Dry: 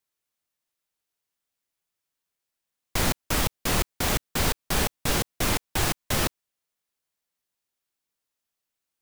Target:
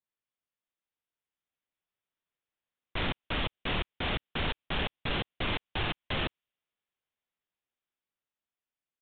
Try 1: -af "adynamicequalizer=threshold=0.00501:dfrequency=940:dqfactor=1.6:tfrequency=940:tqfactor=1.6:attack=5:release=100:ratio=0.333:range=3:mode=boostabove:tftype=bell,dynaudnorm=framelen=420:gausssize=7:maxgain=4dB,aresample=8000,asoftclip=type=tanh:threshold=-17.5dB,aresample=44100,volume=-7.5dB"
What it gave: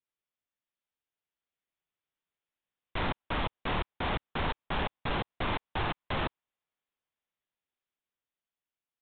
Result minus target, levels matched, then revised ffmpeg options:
1,000 Hz band +4.5 dB
-af "adynamicequalizer=threshold=0.00501:dfrequency=3000:dqfactor=1.6:tfrequency=3000:tqfactor=1.6:attack=5:release=100:ratio=0.333:range=3:mode=boostabove:tftype=bell,dynaudnorm=framelen=420:gausssize=7:maxgain=4dB,aresample=8000,asoftclip=type=tanh:threshold=-17.5dB,aresample=44100,volume=-7.5dB"

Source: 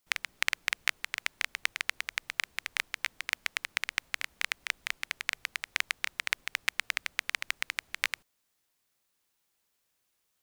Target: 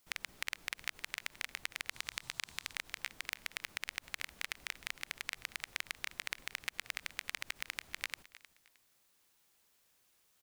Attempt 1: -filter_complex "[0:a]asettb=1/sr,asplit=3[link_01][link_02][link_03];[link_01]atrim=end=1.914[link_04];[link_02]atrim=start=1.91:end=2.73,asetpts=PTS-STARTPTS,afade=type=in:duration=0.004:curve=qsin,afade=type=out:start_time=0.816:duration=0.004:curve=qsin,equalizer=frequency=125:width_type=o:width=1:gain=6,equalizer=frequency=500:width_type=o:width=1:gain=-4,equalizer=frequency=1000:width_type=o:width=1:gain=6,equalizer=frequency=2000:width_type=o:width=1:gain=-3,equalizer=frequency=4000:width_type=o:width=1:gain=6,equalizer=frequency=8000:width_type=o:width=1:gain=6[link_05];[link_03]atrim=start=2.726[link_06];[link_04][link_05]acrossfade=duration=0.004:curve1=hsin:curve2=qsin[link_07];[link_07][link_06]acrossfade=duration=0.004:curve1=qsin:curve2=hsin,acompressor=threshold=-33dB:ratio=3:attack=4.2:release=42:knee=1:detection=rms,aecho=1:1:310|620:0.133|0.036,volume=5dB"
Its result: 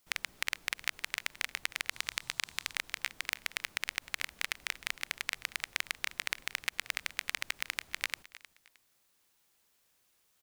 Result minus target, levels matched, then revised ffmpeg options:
downward compressor: peak gain reduction −5.5 dB
-filter_complex "[0:a]asettb=1/sr,asplit=3[link_01][link_02][link_03];[link_01]atrim=end=1.914[link_04];[link_02]atrim=start=1.91:end=2.73,asetpts=PTS-STARTPTS,afade=type=in:duration=0.004:curve=qsin,afade=type=out:start_time=0.816:duration=0.004:curve=qsin,equalizer=frequency=125:width_type=o:width=1:gain=6,equalizer=frequency=500:width_type=o:width=1:gain=-4,equalizer=frequency=1000:width_type=o:width=1:gain=6,equalizer=frequency=2000:width_type=o:width=1:gain=-3,equalizer=frequency=4000:width_type=o:width=1:gain=6,equalizer=frequency=8000:width_type=o:width=1:gain=6[link_05];[link_03]atrim=start=2.726[link_06];[link_04][link_05]acrossfade=duration=0.004:curve1=hsin:curve2=qsin[link_07];[link_07][link_06]acrossfade=duration=0.004:curve1=qsin:curve2=hsin,acompressor=threshold=-41dB:ratio=3:attack=4.2:release=42:knee=1:detection=rms,aecho=1:1:310|620:0.133|0.036,volume=5dB"

